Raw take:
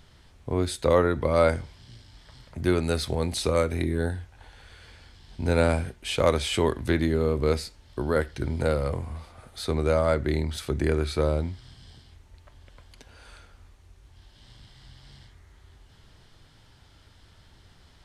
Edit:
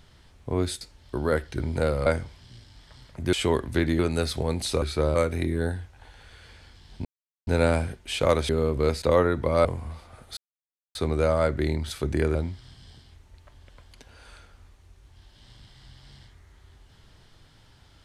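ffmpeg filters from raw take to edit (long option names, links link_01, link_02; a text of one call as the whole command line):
ffmpeg -i in.wav -filter_complex "[0:a]asplit=13[link_01][link_02][link_03][link_04][link_05][link_06][link_07][link_08][link_09][link_10][link_11][link_12][link_13];[link_01]atrim=end=0.812[link_14];[link_02]atrim=start=7.648:end=8.902[link_15];[link_03]atrim=start=1.438:end=2.712[link_16];[link_04]atrim=start=6.458:end=7.122[link_17];[link_05]atrim=start=2.708:end=3.542[link_18];[link_06]atrim=start=11.018:end=11.352[link_19];[link_07]atrim=start=3.538:end=5.44,asetpts=PTS-STARTPTS,afade=type=out:start_time=1.898:duration=0.004:curve=hsin,apad=pad_dur=0.42[link_20];[link_08]atrim=start=5.44:end=6.462,asetpts=PTS-STARTPTS,afade=type=in:duration=0.004:curve=hsin[link_21];[link_09]atrim=start=7.118:end=7.652[link_22];[link_10]atrim=start=0.808:end=1.442[link_23];[link_11]atrim=start=8.898:end=9.62,asetpts=PTS-STARTPTS,afade=type=out:start_time=0.718:duration=0.004:curve=hsin,apad=pad_dur=0.58[link_24];[link_12]atrim=start=9.62:end=11.022,asetpts=PTS-STARTPTS,afade=type=in:duration=0.004:curve=hsin[link_25];[link_13]atrim=start=11.348[link_26];[link_14][link_15]acrossfade=duration=0.004:curve1=hsin:curve2=hsin[link_27];[link_27][link_16]acrossfade=duration=0.004:curve1=hsin:curve2=hsin[link_28];[link_28][link_17]acrossfade=duration=0.004:curve1=hsin:curve2=hsin[link_29];[link_29][link_18]acrossfade=duration=0.004:curve1=hsin:curve2=hsin[link_30];[link_30][link_19]acrossfade=duration=0.004:curve1=hsin:curve2=hsin[link_31];[link_20][link_21]concat=n=2:v=0:a=1[link_32];[link_31][link_32]acrossfade=duration=0.004:curve1=hsin:curve2=hsin[link_33];[link_33][link_22]acrossfade=duration=0.004:curve1=hsin:curve2=hsin[link_34];[link_34][link_23]acrossfade=duration=0.004:curve1=hsin:curve2=hsin[link_35];[link_24][link_25]concat=n=2:v=0:a=1[link_36];[link_35][link_36]acrossfade=duration=0.004:curve1=hsin:curve2=hsin[link_37];[link_37][link_26]acrossfade=duration=0.004:curve1=hsin:curve2=hsin" out.wav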